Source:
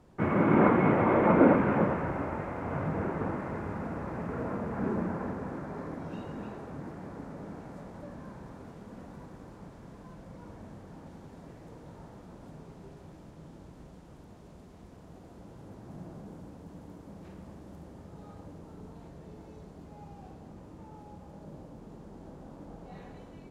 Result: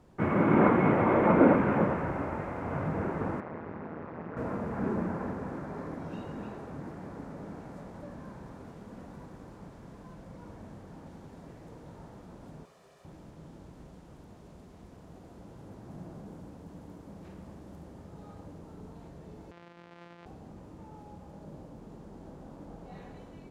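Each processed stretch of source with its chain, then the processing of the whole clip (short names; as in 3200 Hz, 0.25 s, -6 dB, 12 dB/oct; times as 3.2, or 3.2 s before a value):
3.4–4.37 AM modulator 160 Hz, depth 85% + BPF 110–3100 Hz
12.65–13.05 HPF 1100 Hz 6 dB/oct + comb 1.7 ms, depth 50%
19.51–20.26 sample sorter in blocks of 256 samples + BPF 170–2400 Hz + tilt +1.5 dB/oct
whole clip: dry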